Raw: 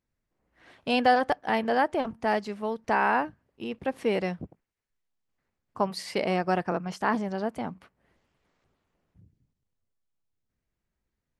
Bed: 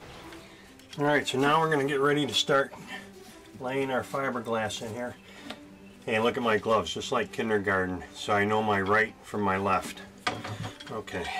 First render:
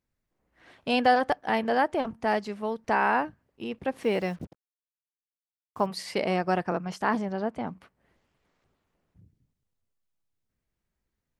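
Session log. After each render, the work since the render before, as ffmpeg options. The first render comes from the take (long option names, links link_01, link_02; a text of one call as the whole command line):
ffmpeg -i in.wav -filter_complex "[0:a]asettb=1/sr,asplit=3[link_01][link_02][link_03];[link_01]atrim=end=4.034[link_04];[link_02]atrim=start=4.03:end=5.86,asetpts=PTS-STARTPTS,afade=type=in:duration=0.004:curve=qsin,afade=type=out:start_time=1.826:duration=0.004:curve=qsin,acrusher=bits=8:mix=0:aa=0.5[link_05];[link_03]atrim=start=5.856[link_06];[link_04][link_05]acrossfade=duration=0.004:curve1=hsin:curve2=qsin[link_07];[link_07][link_06]acrossfade=duration=0.004:curve1=qsin:curve2=hsin,asettb=1/sr,asplit=3[link_08][link_09][link_10];[link_08]atrim=end=7.254[link_11];[link_09]atrim=start=7.25:end=7.67,asetpts=PTS-STARTPTS,afade=type=in:duration=0.004:curve=qsin,afade=type=out:start_time=0.416:duration=0.004:curve=qsin,aemphasis=mode=reproduction:type=50fm[link_12];[link_10]atrim=start=7.666[link_13];[link_11][link_12]acrossfade=duration=0.004:curve1=hsin:curve2=qsin[link_14];[link_14][link_13]acrossfade=duration=0.004:curve1=qsin:curve2=hsin" out.wav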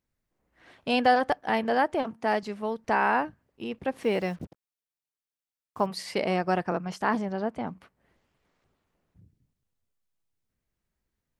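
ffmpeg -i in.wav -filter_complex "[0:a]asettb=1/sr,asplit=3[link_01][link_02][link_03];[link_01]atrim=end=2.034[link_04];[link_02]atrim=start=2.03:end=2.43,asetpts=PTS-STARTPTS,afade=type=in:duration=0.004:curve=qsin,afade=type=out:start_time=0.396:duration=0.004:curve=qsin,highpass=160[link_05];[link_03]atrim=start=2.426[link_06];[link_04][link_05]acrossfade=duration=0.004:curve1=hsin:curve2=qsin[link_07];[link_07][link_06]acrossfade=duration=0.004:curve1=qsin:curve2=hsin" out.wav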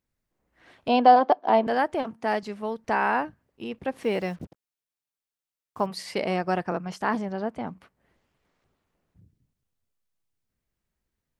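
ffmpeg -i in.wav -filter_complex "[0:a]asettb=1/sr,asplit=3[link_01][link_02][link_03];[link_01]atrim=end=0.884[link_04];[link_02]atrim=start=0.88:end=1.67,asetpts=PTS-STARTPTS,afade=type=in:duration=0.004:curve=qsin,afade=type=out:start_time=0.786:duration=0.004:curve=qsin,highpass=frequency=220:width=0.5412,highpass=frequency=220:width=1.3066,equalizer=frequency=230:width_type=q:width=4:gain=5,equalizer=frequency=370:width_type=q:width=4:gain=8,equalizer=frequency=670:width_type=q:width=4:gain=10,equalizer=frequency=1000:width_type=q:width=4:gain=8,equalizer=frequency=1800:width_type=q:width=4:gain=-9,equalizer=frequency=2600:width_type=q:width=4:gain=-3,lowpass=frequency=4700:width=0.5412,lowpass=frequency=4700:width=1.3066[link_05];[link_03]atrim=start=1.666[link_06];[link_04][link_05]acrossfade=duration=0.004:curve1=hsin:curve2=qsin[link_07];[link_07][link_06]acrossfade=duration=0.004:curve1=qsin:curve2=hsin" out.wav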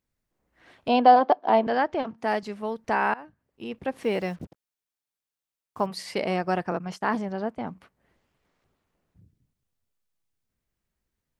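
ffmpeg -i in.wav -filter_complex "[0:a]asettb=1/sr,asplit=3[link_01][link_02][link_03];[link_01]atrim=end=0.944[link_04];[link_02]atrim=start=0.94:end=2.18,asetpts=PTS-STARTPTS,afade=type=in:duration=0.004:curve=qsin,afade=type=out:start_time=1.236:duration=0.004:curve=qsin,lowpass=frequency=5800:width=0.5412,lowpass=frequency=5800:width=1.3066[link_05];[link_03]atrim=start=2.176[link_06];[link_04][link_05]acrossfade=duration=0.004:curve1=hsin:curve2=qsin[link_07];[link_07][link_06]acrossfade=duration=0.004:curve1=qsin:curve2=hsin,asettb=1/sr,asplit=3[link_08][link_09][link_10];[link_08]atrim=end=6.794[link_11];[link_09]atrim=start=6.79:end=7.58,asetpts=PTS-STARTPTS,afade=type=in:duration=0.004:curve=qsin,afade=type=out:start_time=0.786:duration=0.004:curve=qsin,agate=range=-33dB:threshold=-41dB:ratio=3:release=100:detection=peak[link_12];[link_10]atrim=start=7.576[link_13];[link_11][link_12]acrossfade=duration=0.004:curve1=hsin:curve2=qsin[link_14];[link_14][link_13]acrossfade=duration=0.004:curve1=qsin:curve2=hsin,asplit=2[link_15][link_16];[link_15]atrim=end=3.14,asetpts=PTS-STARTPTS,afade=type=out:start_time=3.136:duration=0.004:curve=hsin:silence=0.0749894[link_17];[link_16]atrim=start=3.14,asetpts=PTS-STARTPTS,afade=type=in:duration=0.6:silence=0.0749894[link_18];[link_17][link_18]concat=n=2:v=0:a=1" out.wav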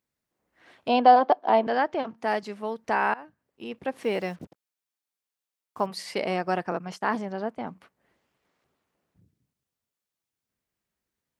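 ffmpeg -i in.wav -af "highpass=frequency=200:poles=1" out.wav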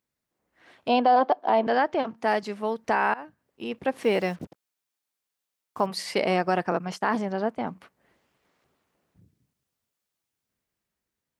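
ffmpeg -i in.wav -af "dynaudnorm=framelen=250:gausssize=9:maxgain=4dB,alimiter=limit=-11.5dB:level=0:latency=1:release=68" out.wav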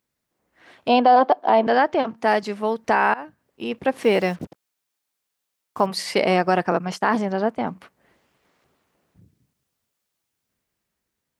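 ffmpeg -i in.wav -af "volume=5dB" out.wav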